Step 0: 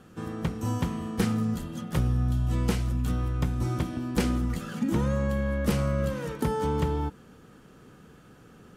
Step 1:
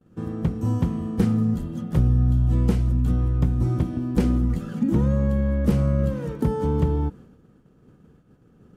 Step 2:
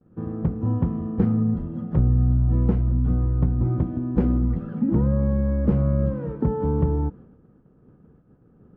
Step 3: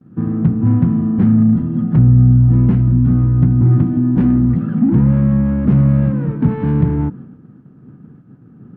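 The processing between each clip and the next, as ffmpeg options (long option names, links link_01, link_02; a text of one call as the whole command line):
ffmpeg -i in.wav -af "tiltshelf=frequency=690:gain=7,agate=range=-33dB:threshold=-40dB:ratio=3:detection=peak" out.wav
ffmpeg -i in.wav -af "lowpass=1300" out.wav
ffmpeg -i in.wav -filter_complex "[0:a]asplit=2[link_01][link_02];[link_02]highpass=frequency=720:poles=1,volume=25dB,asoftclip=type=tanh:threshold=-8dB[link_03];[link_01][link_03]amix=inputs=2:normalize=0,lowpass=frequency=1600:poles=1,volume=-6dB,equalizer=frequency=125:width_type=o:width=1:gain=12,equalizer=frequency=250:width_type=o:width=1:gain=7,equalizer=frequency=500:width_type=o:width=1:gain=-11,equalizer=frequency=1000:width_type=o:width=1:gain=-5,volume=-2dB" out.wav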